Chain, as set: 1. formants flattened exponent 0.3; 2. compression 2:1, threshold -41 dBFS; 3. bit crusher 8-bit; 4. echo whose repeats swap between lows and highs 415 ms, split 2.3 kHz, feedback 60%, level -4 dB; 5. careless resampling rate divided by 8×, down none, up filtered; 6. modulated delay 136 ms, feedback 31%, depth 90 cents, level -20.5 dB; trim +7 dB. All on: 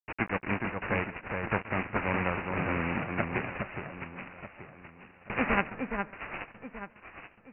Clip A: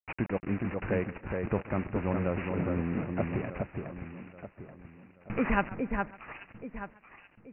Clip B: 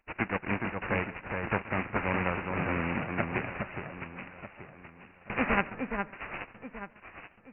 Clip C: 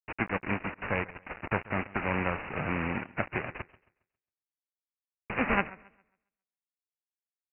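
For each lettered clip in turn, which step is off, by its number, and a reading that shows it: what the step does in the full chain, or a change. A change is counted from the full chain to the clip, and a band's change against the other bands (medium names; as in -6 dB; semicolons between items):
1, 2 kHz band -8.5 dB; 3, distortion -14 dB; 4, momentary loudness spread change -8 LU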